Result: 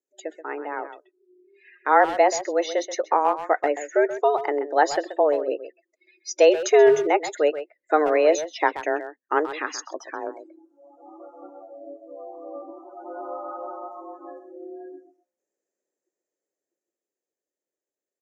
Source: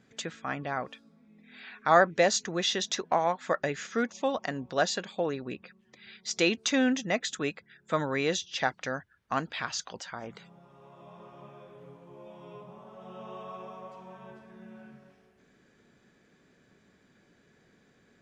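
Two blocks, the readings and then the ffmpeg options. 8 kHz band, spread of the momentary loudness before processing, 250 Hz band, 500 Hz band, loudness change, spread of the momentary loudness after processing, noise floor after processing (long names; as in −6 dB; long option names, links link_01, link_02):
+0.5 dB, 22 LU, +1.5 dB, +10.5 dB, +7.5 dB, 22 LU, below −85 dBFS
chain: -filter_complex "[0:a]acrossover=split=3500[link_01][link_02];[link_02]acompressor=threshold=-50dB:ratio=4:attack=1:release=60[link_03];[link_01][link_03]amix=inputs=2:normalize=0,afftdn=noise_reduction=35:noise_floor=-41,afreqshift=150,equalizer=frequency=490:width_type=o:width=0.89:gain=8,dynaudnorm=framelen=130:gausssize=31:maxgain=6.5dB,highshelf=frequency=4900:width_type=q:width=3:gain=11.5,asplit=2[link_04][link_05];[link_05]adelay=130,highpass=300,lowpass=3400,asoftclip=type=hard:threshold=-13dB,volume=-11dB[link_06];[link_04][link_06]amix=inputs=2:normalize=0"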